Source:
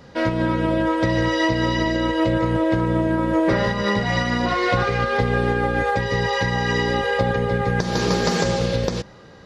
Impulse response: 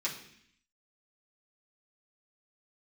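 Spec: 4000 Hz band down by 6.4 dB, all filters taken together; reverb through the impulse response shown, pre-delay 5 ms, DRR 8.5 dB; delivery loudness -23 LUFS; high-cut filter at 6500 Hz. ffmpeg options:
-filter_complex "[0:a]lowpass=6.5k,equalizer=f=4k:t=o:g=-8.5,asplit=2[a][b];[1:a]atrim=start_sample=2205,adelay=5[c];[b][c]afir=irnorm=-1:irlink=0,volume=-13dB[d];[a][d]amix=inputs=2:normalize=0,volume=-2dB"

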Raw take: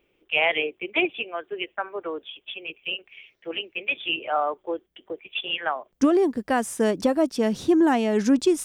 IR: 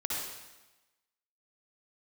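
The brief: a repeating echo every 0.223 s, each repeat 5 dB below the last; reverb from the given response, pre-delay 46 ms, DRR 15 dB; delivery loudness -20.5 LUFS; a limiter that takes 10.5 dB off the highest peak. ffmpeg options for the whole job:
-filter_complex "[0:a]alimiter=limit=-18.5dB:level=0:latency=1,aecho=1:1:223|446|669|892|1115|1338|1561:0.562|0.315|0.176|0.0988|0.0553|0.031|0.0173,asplit=2[a][b];[1:a]atrim=start_sample=2205,adelay=46[c];[b][c]afir=irnorm=-1:irlink=0,volume=-20dB[d];[a][d]amix=inputs=2:normalize=0,volume=7.5dB"

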